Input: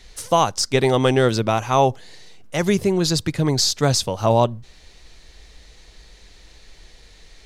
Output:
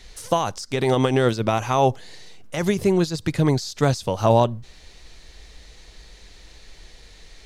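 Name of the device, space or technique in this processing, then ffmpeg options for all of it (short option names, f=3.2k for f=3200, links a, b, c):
de-esser from a sidechain: -filter_complex "[0:a]asplit=2[a][b];[b]highpass=4.5k,apad=whole_len=328643[c];[a][c]sidechaincompress=threshold=-34dB:ratio=4:attack=1:release=62,volume=1dB"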